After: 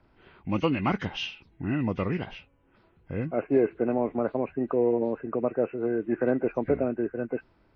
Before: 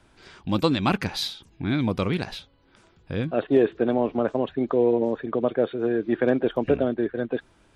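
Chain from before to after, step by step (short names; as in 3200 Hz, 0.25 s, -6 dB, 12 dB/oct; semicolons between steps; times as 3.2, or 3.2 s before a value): nonlinear frequency compression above 1400 Hz 1.5:1; mismatched tape noise reduction decoder only; gain -3.5 dB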